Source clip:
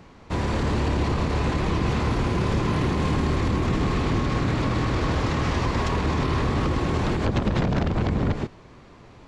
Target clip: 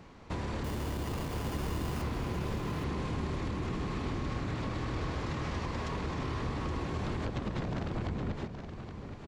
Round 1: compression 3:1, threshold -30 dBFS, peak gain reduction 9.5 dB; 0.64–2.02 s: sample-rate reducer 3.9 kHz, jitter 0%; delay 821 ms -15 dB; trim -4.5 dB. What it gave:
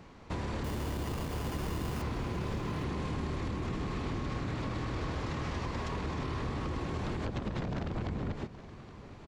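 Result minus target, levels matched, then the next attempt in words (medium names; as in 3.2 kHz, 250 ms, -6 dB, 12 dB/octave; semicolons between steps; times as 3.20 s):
echo-to-direct -7 dB
compression 3:1, threshold -30 dBFS, peak gain reduction 9.5 dB; 0.64–2.02 s: sample-rate reducer 3.9 kHz, jitter 0%; delay 821 ms -8 dB; trim -4.5 dB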